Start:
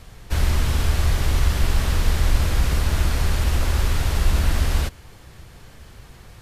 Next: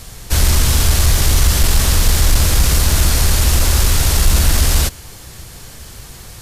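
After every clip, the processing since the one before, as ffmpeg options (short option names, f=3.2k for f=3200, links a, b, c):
-af "bass=f=250:g=0,treble=f=4k:g=12,acontrast=87"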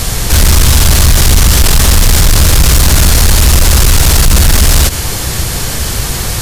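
-af "aeval=exprs='0.841*sin(PI/2*2*val(0)/0.841)':c=same,alimiter=level_in=11dB:limit=-1dB:release=50:level=0:latency=1,volume=-1dB"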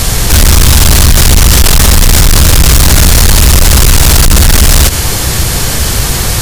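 -af "asoftclip=type=hard:threshold=-6dB,volume=4.5dB"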